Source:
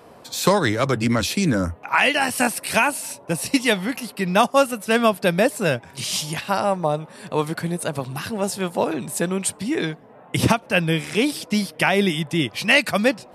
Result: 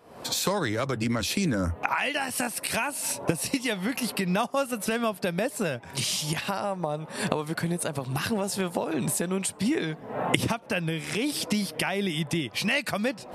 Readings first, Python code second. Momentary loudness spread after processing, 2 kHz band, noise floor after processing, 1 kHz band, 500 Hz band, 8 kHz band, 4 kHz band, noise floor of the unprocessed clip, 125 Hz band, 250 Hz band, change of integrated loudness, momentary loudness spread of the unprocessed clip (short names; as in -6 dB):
4 LU, -8.0 dB, -45 dBFS, -8.0 dB, -8.0 dB, -3.0 dB, -5.5 dB, -47 dBFS, -5.5 dB, -6.0 dB, -6.5 dB, 9 LU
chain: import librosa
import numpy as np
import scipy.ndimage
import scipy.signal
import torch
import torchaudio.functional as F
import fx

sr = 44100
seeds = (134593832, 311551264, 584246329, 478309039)

y = fx.recorder_agc(x, sr, target_db=-8.5, rise_db_per_s=69.0, max_gain_db=30)
y = y * librosa.db_to_amplitude(-10.5)